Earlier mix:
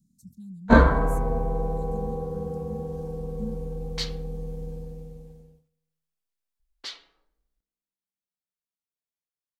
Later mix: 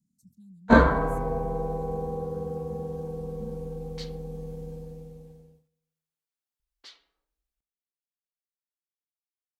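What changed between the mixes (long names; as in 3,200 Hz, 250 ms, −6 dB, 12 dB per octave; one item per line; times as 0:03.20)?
speech −8.0 dB
second sound −11.5 dB
master: add high-pass filter 99 Hz 6 dB per octave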